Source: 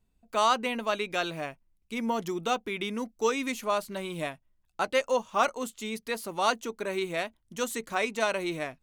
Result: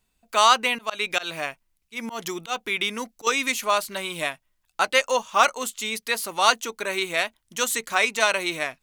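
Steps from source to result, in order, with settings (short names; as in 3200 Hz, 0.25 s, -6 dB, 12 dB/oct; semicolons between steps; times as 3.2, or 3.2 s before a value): tilt shelf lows -7.5 dB, about 660 Hz; 0.75–3.27 auto swell 0.144 s; gain +4 dB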